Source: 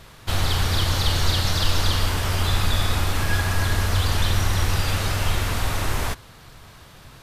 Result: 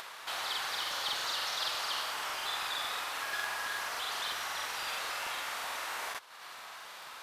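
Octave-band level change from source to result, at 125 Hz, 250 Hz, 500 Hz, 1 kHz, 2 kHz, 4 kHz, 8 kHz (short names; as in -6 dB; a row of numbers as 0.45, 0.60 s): under -40 dB, -27.0 dB, -14.5 dB, -7.5 dB, -7.0 dB, -8.5 dB, -10.5 dB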